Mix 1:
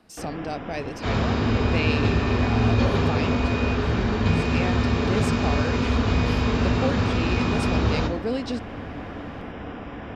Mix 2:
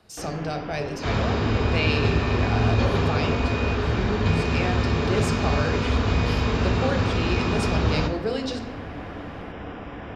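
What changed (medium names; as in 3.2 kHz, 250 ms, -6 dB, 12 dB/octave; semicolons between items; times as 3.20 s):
speech: send on; master: add peaking EQ 240 Hz -4.5 dB 0.28 oct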